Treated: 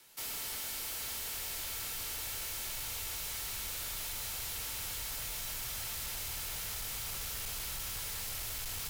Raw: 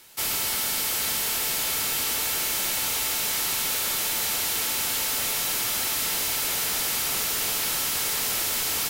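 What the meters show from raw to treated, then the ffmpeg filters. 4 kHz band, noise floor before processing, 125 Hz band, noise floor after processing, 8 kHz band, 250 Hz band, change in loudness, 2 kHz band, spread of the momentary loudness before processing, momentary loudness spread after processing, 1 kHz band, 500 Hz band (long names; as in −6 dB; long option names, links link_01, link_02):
−13.5 dB, −27 dBFS, −5.0 dB, −40 dBFS, −13.5 dB, −15.5 dB, −13.5 dB, −14.0 dB, 0 LU, 0 LU, −14.5 dB, −15.0 dB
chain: -af "afreqshift=13,asubboost=boost=12:cutoff=79,asoftclip=type=hard:threshold=-28.5dB,volume=-9dB"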